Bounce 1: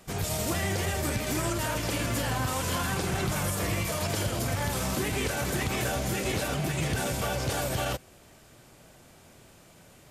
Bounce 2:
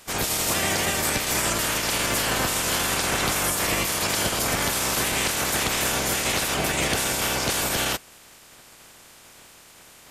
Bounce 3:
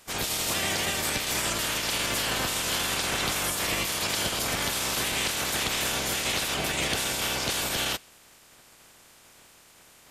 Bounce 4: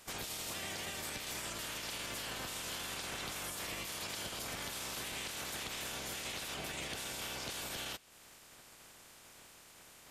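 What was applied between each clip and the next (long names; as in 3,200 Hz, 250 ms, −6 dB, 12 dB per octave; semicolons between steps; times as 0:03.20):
ceiling on every frequency bin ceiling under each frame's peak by 18 dB; level +5 dB
dynamic equaliser 3,500 Hz, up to +5 dB, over −39 dBFS, Q 1.2; level −5.5 dB
downward compressor 3 to 1, threshold −40 dBFS, peak gain reduction 12 dB; level −3 dB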